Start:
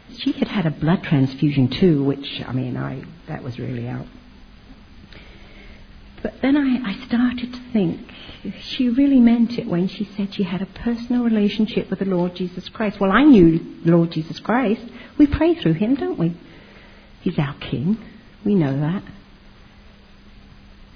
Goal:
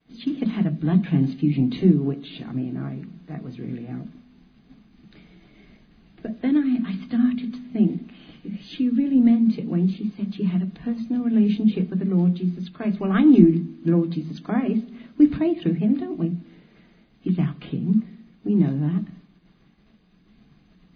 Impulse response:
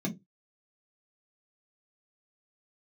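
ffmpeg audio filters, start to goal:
-filter_complex "[0:a]agate=range=-33dB:threshold=-41dB:ratio=3:detection=peak,asplit=2[a][b];[1:a]atrim=start_sample=2205[c];[b][c]afir=irnorm=-1:irlink=0,volume=-9dB[d];[a][d]amix=inputs=2:normalize=0,volume=-13dB"

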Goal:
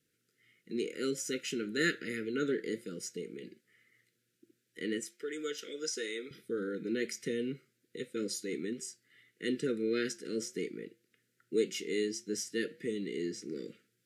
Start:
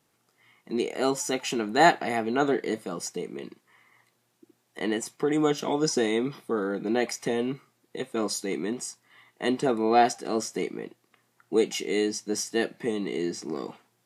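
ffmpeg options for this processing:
-filter_complex "[0:a]asettb=1/sr,asplit=3[a][b][c];[a]atrim=end=5.044[d];[b]atrim=start=5.04:end=6.31,asetpts=PTS-STARTPTS,afade=t=in:d=0.004:c=qsin,afade=t=out:st=1.266:d=0.004:c=qsin,highpass=570[e];[c]atrim=start=6.306[f];[d][e]acrossfade=d=0.004:c1=hsin:c2=qsin[g];[g][f]acrossfade=d=0.004:c1=qsin:c2=hsin,flanger=delay=6.3:depth=1.6:regen=-87:speed=1.7:shape=triangular,asuperstop=centerf=850:order=12:qfactor=1,volume=-2.5dB"

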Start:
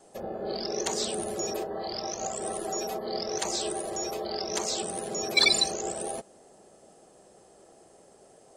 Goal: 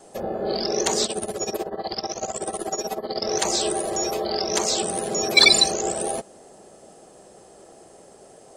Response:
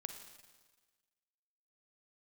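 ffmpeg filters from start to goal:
-filter_complex "[0:a]asettb=1/sr,asplit=3[a][b][c];[a]atrim=end=1.054[d];[b]atrim=start=1.05:end=3.22,asetpts=PTS-STARTPTS,afade=t=in:d=0.004:c=qsin,afade=t=out:st=2.166:d=0.004:c=qsin,tremolo=f=16:d=0.84[e];[c]atrim=start=3.216[f];[d][e]acrossfade=d=0.004:c1=hsin:c2=qsin[g];[g][f]acrossfade=d=0.004:c1=qsin:c2=hsin,volume=7.5dB"

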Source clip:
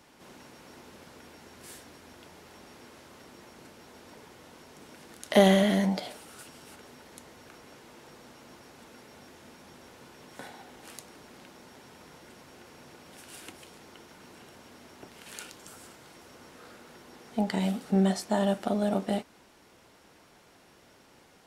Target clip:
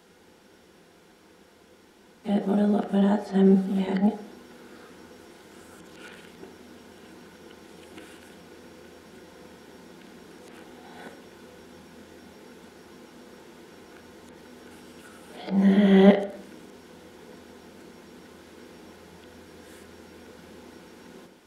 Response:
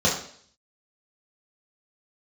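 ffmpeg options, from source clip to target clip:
-filter_complex "[0:a]areverse,acrossover=split=3100[a][b];[b]acompressor=threshold=-54dB:ratio=4:attack=1:release=60[c];[a][c]amix=inputs=2:normalize=0,asplit=2[d][e];[e]highpass=210,equalizer=f=230:t=q:w=4:g=-8,equalizer=f=330:t=q:w=4:g=5,equalizer=f=640:t=q:w=4:g=-4,equalizer=f=1k:t=q:w=4:g=-9,equalizer=f=2.6k:t=q:w=4:g=-7,lowpass=f=4.9k:w=0.5412,lowpass=f=4.9k:w=1.3066[f];[1:a]atrim=start_sample=2205,lowpass=3.9k,lowshelf=f=220:g=9.5[g];[f][g]afir=irnorm=-1:irlink=0,volume=-18dB[h];[d][h]amix=inputs=2:normalize=0"

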